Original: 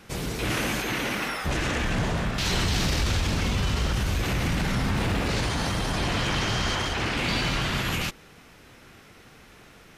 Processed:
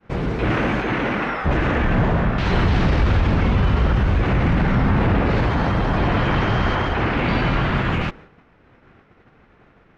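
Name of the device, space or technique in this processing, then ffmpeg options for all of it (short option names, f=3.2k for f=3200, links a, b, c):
hearing-loss simulation: -af "lowpass=1.7k,agate=range=-33dB:threshold=-44dB:ratio=3:detection=peak,volume=8.5dB"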